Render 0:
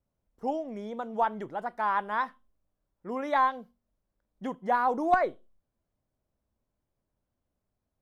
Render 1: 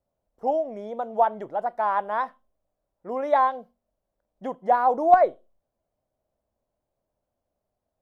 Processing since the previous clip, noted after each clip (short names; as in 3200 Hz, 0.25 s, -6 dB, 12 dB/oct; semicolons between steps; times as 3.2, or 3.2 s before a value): bell 640 Hz +13 dB 1.1 oct; gain -3 dB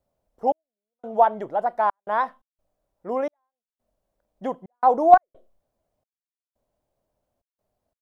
step gate "xxx...xxxxx.xx.x" 87 bpm -60 dB; gain +3.5 dB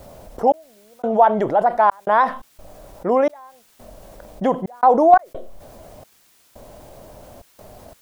fast leveller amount 50%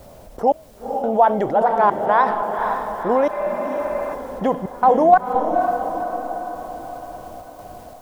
diffused feedback echo 0.5 s, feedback 55%, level -5.5 dB; spectral repair 3.34–4.12, 330–2900 Hz before; gain -1 dB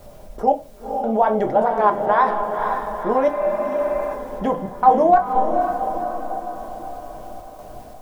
reverb RT60 0.25 s, pre-delay 3 ms, DRR 3.5 dB; gain -2.5 dB